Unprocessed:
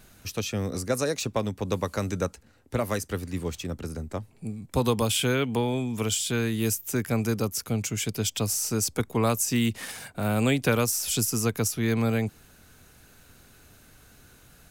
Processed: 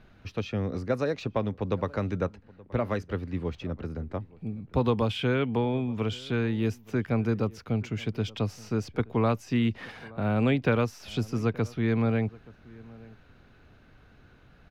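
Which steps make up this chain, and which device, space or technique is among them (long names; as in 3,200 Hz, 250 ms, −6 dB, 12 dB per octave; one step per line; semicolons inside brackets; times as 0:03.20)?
shout across a valley (high-frequency loss of the air 310 metres; slap from a distant wall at 150 metres, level −22 dB)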